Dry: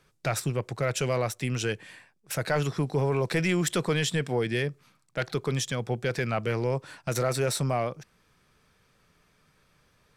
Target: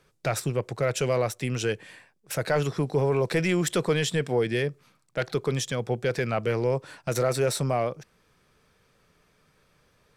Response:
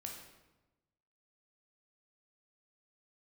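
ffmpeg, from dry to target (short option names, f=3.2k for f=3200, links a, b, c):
-af "equalizer=f=480:t=o:w=1:g=4"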